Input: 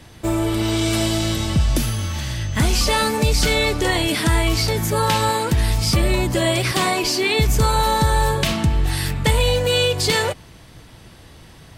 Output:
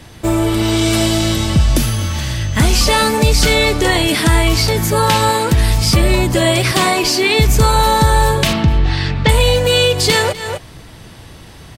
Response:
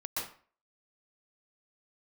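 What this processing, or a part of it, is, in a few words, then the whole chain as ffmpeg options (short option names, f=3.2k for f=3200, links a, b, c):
ducked delay: -filter_complex "[0:a]asettb=1/sr,asplit=3[a][b][c];[a]atrim=end=8.534[d];[b]atrim=start=8.53:end=9.29,asetpts=PTS-STARTPTS,afade=t=in:d=0.004:c=qsin,afade=t=out:st=0.756:d=0.004:c=qsin,lowpass=f=5k:w=0.5412,lowpass=f=5k:w=1.3066[e];[c]atrim=start=9.286[f];[d][e]acrossfade=d=0.004:c1=hsin:c2=qsin[g];[g][f]acrossfade=d=0.004:c1=qsin:c2=hsin,asplit=3[h][i][j];[i]adelay=250,volume=-4dB[k];[j]apad=whole_len=530118[l];[k][l]sidechaincompress=threshold=-41dB:ratio=4:attack=23:release=146[m];[h][m]amix=inputs=2:normalize=0,volume=5.5dB"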